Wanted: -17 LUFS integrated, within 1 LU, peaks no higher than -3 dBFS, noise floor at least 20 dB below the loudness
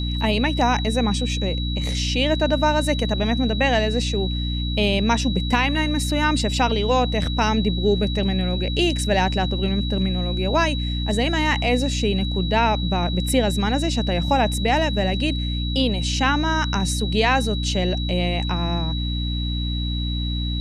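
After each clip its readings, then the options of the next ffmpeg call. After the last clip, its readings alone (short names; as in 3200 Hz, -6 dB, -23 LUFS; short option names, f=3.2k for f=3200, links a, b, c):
hum 60 Hz; harmonics up to 300 Hz; hum level -22 dBFS; steady tone 3900 Hz; tone level -30 dBFS; loudness -21.5 LUFS; peak -6.0 dBFS; loudness target -17.0 LUFS
-> -af "bandreject=f=60:t=h:w=6,bandreject=f=120:t=h:w=6,bandreject=f=180:t=h:w=6,bandreject=f=240:t=h:w=6,bandreject=f=300:t=h:w=6"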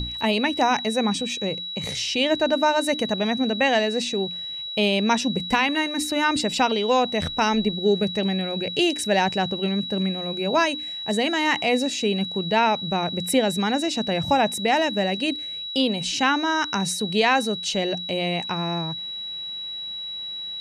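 hum none; steady tone 3900 Hz; tone level -30 dBFS
-> -af "bandreject=f=3.9k:w=30"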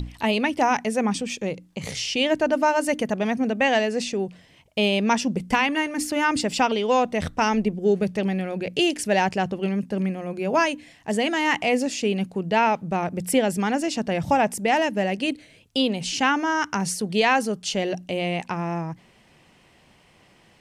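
steady tone none; loudness -23.5 LUFS; peak -6.0 dBFS; loudness target -17.0 LUFS
-> -af "volume=6.5dB,alimiter=limit=-3dB:level=0:latency=1"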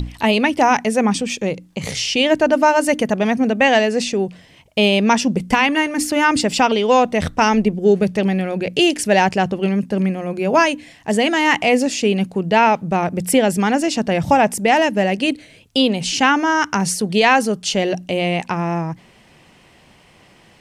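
loudness -17.0 LUFS; peak -3.0 dBFS; noise floor -50 dBFS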